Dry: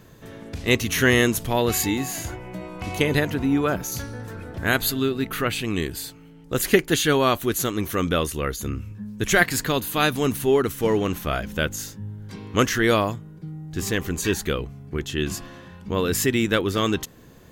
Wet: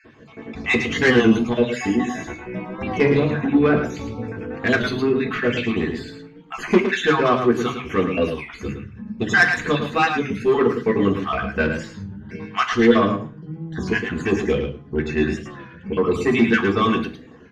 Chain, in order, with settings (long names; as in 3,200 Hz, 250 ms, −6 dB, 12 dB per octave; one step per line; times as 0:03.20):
time-frequency cells dropped at random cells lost 44%
low-pass filter 2,600 Hz 12 dB per octave
low-shelf EQ 200 Hz +6 dB
soft clipping −15 dBFS, distortion −13 dB
single-tap delay 109 ms −7.5 dB
convolution reverb RT60 0.35 s, pre-delay 3 ms, DRR −0.5 dB
wow of a warped record 33 1/3 rpm, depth 100 cents